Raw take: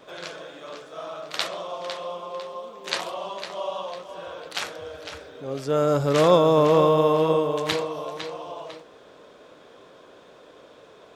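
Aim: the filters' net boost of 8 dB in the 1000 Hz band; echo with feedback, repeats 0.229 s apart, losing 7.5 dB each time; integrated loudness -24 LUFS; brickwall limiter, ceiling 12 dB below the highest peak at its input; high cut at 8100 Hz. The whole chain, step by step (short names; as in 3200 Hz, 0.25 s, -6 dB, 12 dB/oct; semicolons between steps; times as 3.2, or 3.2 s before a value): LPF 8100 Hz; bell 1000 Hz +9 dB; limiter -13 dBFS; feedback echo 0.229 s, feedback 42%, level -7.5 dB; gain +1.5 dB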